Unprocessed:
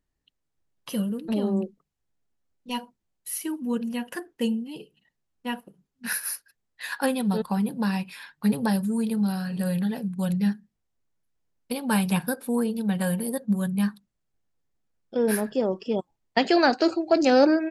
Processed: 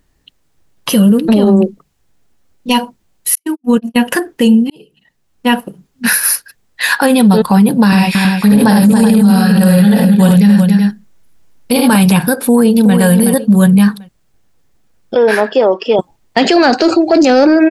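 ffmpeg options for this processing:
ffmpeg -i in.wav -filter_complex "[0:a]asettb=1/sr,asplit=3[link_01][link_02][link_03];[link_01]atrim=end=3.354[link_04];[link_02]atrim=start=3.35:end=3.96,asetpts=PTS-STARTPTS,afade=type=in:duration=0.004:curve=qsin,afade=type=out:start_time=0.606:duration=0.004:curve=qsin,agate=range=-58dB:threshold=-28dB:ratio=16:release=100:detection=peak[link_05];[link_03]atrim=start=3.956[link_06];[link_04][link_05]acrossfade=duration=0.004:curve1=hsin:curve2=qsin[link_07];[link_07][link_06]acrossfade=duration=0.004:curve1=qsin:curve2=hsin,asettb=1/sr,asplit=3[link_08][link_09][link_10];[link_08]atrim=end=7.874[link_11];[link_09]atrim=start=7.87:end=11.96,asetpts=PTS-STARTPTS,afade=type=in:duration=0.004:curve=qsin,afade=type=out:start_time=4.086:duration=0.004:curve=qsin,aecho=1:1:54|78|278|378:0.562|0.631|0.376|0.316,atrim=end_sample=180369[link_12];[link_10]atrim=start=11.956[link_13];[link_11][link_12]acrossfade=duration=0.004:curve1=hsin:curve2=qsin[link_14];[link_14][link_13]acrossfade=duration=0.004:curve1=qsin:curve2=hsin,asplit=2[link_15][link_16];[link_16]afade=type=in:start_time=12.46:duration=0.01,afade=type=out:start_time=12.97:duration=0.01,aecho=0:1:370|740|1110:0.398107|0.0995268|0.0248817[link_17];[link_15][link_17]amix=inputs=2:normalize=0,asettb=1/sr,asplit=3[link_18][link_19][link_20];[link_18]atrim=end=15.154[link_21];[link_19]atrim=start=15.15:end=15.99,asetpts=PTS-STARTPTS,afade=type=in:duration=0.004:curve=qsin,afade=type=out:start_time=0.836:duration=0.004:curve=qsin,highpass=500,lowpass=3900[link_22];[link_20]atrim=start=15.986[link_23];[link_21][link_22]acrossfade=duration=0.004:curve1=hsin:curve2=qsin[link_24];[link_24][link_23]acrossfade=duration=0.004:curve1=qsin:curve2=hsin,asplit=2[link_25][link_26];[link_25]atrim=end=4.7,asetpts=PTS-STARTPTS,afade=type=out:start_time=4.696:duration=0.004:curve=hsin[link_27];[link_26]atrim=start=4.7,asetpts=PTS-STARTPTS,afade=type=in:duration=0.84[link_28];[link_27][link_28]concat=n=2:v=0:a=1,acontrast=83,alimiter=level_in=15.5dB:limit=-1dB:release=50:level=0:latency=1,volume=-1dB" out.wav

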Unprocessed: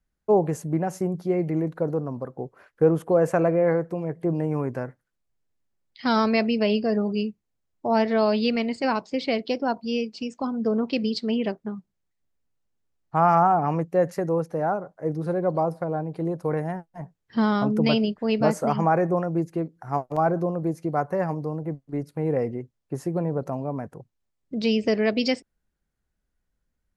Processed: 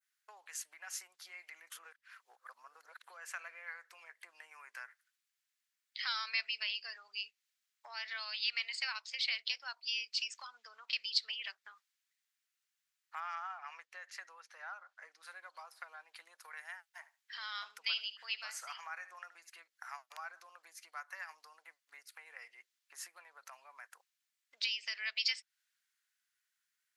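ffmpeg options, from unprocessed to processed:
ffmpeg -i in.wav -filter_complex "[0:a]asettb=1/sr,asplit=3[link_01][link_02][link_03];[link_01]atrim=end=13.204[link_04];[link_02]atrim=start=13.2:end=15.23,asetpts=PTS-STARTPTS,afade=type=in:duration=0.004:curve=qsin,afade=type=out:start_time=2.026:duration=0.004:curve=qsin,adynamicsmooth=sensitivity=1:basefreq=6700[link_05];[link_03]atrim=start=15.226[link_06];[link_04][link_05]acrossfade=duration=0.004:curve1=hsin:curve2=qsin[link_07];[link_07][link_06]acrossfade=duration=0.004:curve1=qsin:curve2=hsin,asettb=1/sr,asplit=3[link_08][link_09][link_10];[link_08]atrim=end=16.864[link_11];[link_09]atrim=start=16.86:end=19.5,asetpts=PTS-STARTPTS,afade=type=in:duration=0.004:curve=qsin,afade=type=out:start_time=2.636:duration=0.004:curve=qsin,aecho=1:1:74|148:0.141|0.0226,atrim=end_sample=116424[link_12];[link_10]atrim=start=19.496[link_13];[link_11][link_12]acrossfade=duration=0.004:curve1=hsin:curve2=qsin[link_14];[link_14][link_13]acrossfade=duration=0.004:curve1=qsin:curve2=hsin,asplit=3[link_15][link_16][link_17];[link_15]atrim=end=1.702[link_18];[link_16]atrim=start=1.698:end=3.042,asetpts=PTS-STARTPTS,areverse[link_19];[link_17]atrim=start=3.038[link_20];[link_18][link_19]acrossfade=duration=0.004:curve1=hsin:curve2=hsin[link_21];[link_21][link_20]acrossfade=duration=0.004:curve1=hsin:curve2=hsin,adynamicequalizer=threshold=0.00708:dfrequency=4000:dqfactor=0.77:tfrequency=4000:tqfactor=0.77:attack=5:release=100:ratio=0.375:range=3:mode=boostabove:tftype=bell,acompressor=threshold=-32dB:ratio=6,highpass=frequency=1500:width=0.5412,highpass=frequency=1500:width=1.3066,volume=5dB" out.wav

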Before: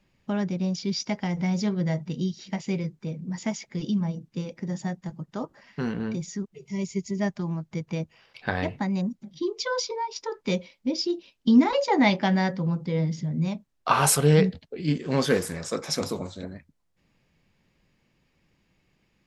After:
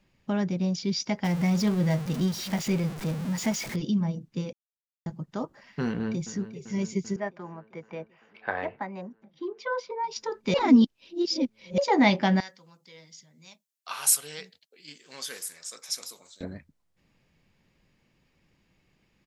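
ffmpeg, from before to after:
ffmpeg -i in.wav -filter_complex "[0:a]asettb=1/sr,asplit=3[link_01][link_02][link_03];[link_01]atrim=end=1.244[link_04];[link_02]atrim=start=1.24:end=3.76,asetpts=PTS-STARTPTS,afade=type=in:duration=0.004:curve=qsin,afade=type=out:start_time=2.516:duration=0.004:curve=qsin,aeval=exprs='val(0)+0.5*0.0251*sgn(val(0))':channel_layout=same[link_05];[link_03]atrim=start=3.756[link_06];[link_04][link_05]acrossfade=duration=0.004:curve1=hsin:curve2=qsin[link_07];[link_07][link_06]acrossfade=duration=0.004:curve1=qsin:curve2=hsin,asplit=2[link_08][link_09];[link_09]afade=type=in:start_time=5.87:duration=0.01,afade=type=out:start_time=6.41:duration=0.01,aecho=0:1:390|780|1170|1560|1950|2340|2730|3120|3510|3900|4290|4680:0.237137|0.177853|0.13339|0.100042|0.0750317|0.0562738|0.0422054|0.031654|0.0237405|0.0178054|0.013354|0.0100155[link_10];[link_08][link_10]amix=inputs=2:normalize=0,asettb=1/sr,asplit=3[link_11][link_12][link_13];[link_11]atrim=end=7.164[link_14];[link_12]atrim=start=7.16:end=10.04,asetpts=PTS-STARTPTS,afade=type=in:duration=0.004:curve=qsin,afade=type=out:start_time=2.876:duration=0.004:curve=qsin,acrossover=split=390 2400:gain=0.141 1 0.0891[link_15][link_16][link_17];[link_15][link_16][link_17]amix=inputs=3:normalize=0[link_18];[link_13]atrim=start=10.036[link_19];[link_14][link_18]acrossfade=duration=0.004:curve1=hsin:curve2=qsin[link_20];[link_20][link_19]acrossfade=duration=0.004:curve1=qsin:curve2=hsin,asettb=1/sr,asplit=3[link_21][link_22][link_23];[link_21]atrim=end=12.404[link_24];[link_22]atrim=start=12.4:end=16.41,asetpts=PTS-STARTPTS,afade=type=in:duration=0.004:curve=qsin,afade=type=out:start_time=4.006:duration=0.004:curve=qsin,aderivative[link_25];[link_23]atrim=start=16.406[link_26];[link_24][link_25]acrossfade=duration=0.004:curve1=hsin:curve2=qsin[link_27];[link_27][link_26]acrossfade=duration=0.004:curve1=qsin:curve2=hsin,asplit=5[link_28][link_29][link_30][link_31][link_32];[link_28]atrim=end=4.53,asetpts=PTS-STARTPTS,afade=type=out:start_time=4.526:duration=0.004:curve=hsin[link_33];[link_29]atrim=start=4.53:end=5.06,asetpts=PTS-STARTPTS,volume=0[link_34];[link_30]atrim=start=5.06:end=10.542,asetpts=PTS-STARTPTS,afade=type=in:duration=0.004:curve=hsin[link_35];[link_31]atrim=start=10.538:end=11.782,asetpts=PTS-STARTPTS,areverse[link_36];[link_32]atrim=start=11.778[link_37];[link_33][link_34][link_35]concat=n=3:v=0:a=1[link_38];[link_38][link_36]acrossfade=duration=0.004:curve1=hsin:curve2=hsin[link_39];[link_39][link_37]acrossfade=duration=0.004:curve1=hsin:curve2=hsin" out.wav

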